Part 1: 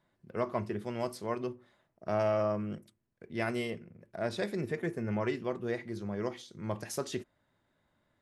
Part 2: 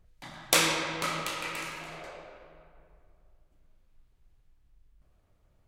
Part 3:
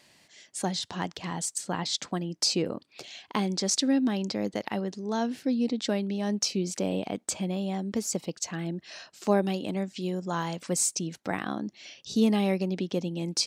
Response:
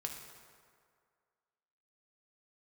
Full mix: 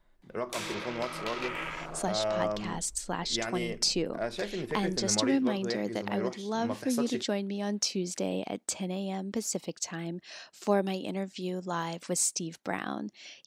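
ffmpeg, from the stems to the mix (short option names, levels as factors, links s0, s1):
-filter_complex "[0:a]lowshelf=f=130:g=-11.5,acontrast=54,volume=0.668[s0];[1:a]afwtdn=0.0112,dynaudnorm=f=370:g=3:m=5.31,volume=0.335[s1];[2:a]adelay=1400,volume=0.841[s2];[s0][s1]amix=inputs=2:normalize=0,lowshelf=f=120:g=8,alimiter=limit=0.0891:level=0:latency=1:release=299,volume=1[s3];[s2][s3]amix=inputs=2:normalize=0,equalizer=f=91:t=o:w=2.1:g=-5.5"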